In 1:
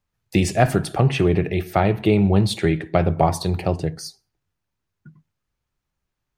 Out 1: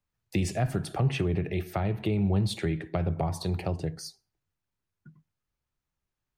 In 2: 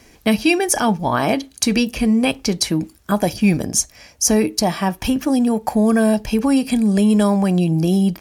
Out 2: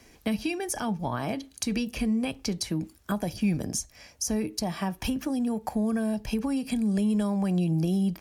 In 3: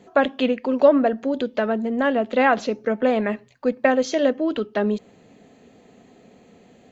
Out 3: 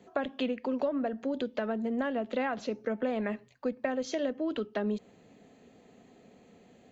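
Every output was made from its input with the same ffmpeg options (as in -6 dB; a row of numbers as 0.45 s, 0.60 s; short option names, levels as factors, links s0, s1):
-filter_complex "[0:a]acrossover=split=180[s0][s1];[s1]acompressor=threshold=0.0794:ratio=6[s2];[s0][s2]amix=inputs=2:normalize=0,volume=0.473"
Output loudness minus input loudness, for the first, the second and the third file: -9.5 LU, -11.0 LU, -11.5 LU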